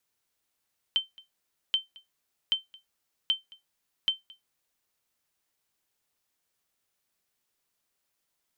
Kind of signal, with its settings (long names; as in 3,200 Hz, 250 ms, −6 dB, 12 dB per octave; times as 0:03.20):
ping with an echo 3,100 Hz, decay 0.16 s, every 0.78 s, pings 5, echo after 0.22 s, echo −24.5 dB −16.5 dBFS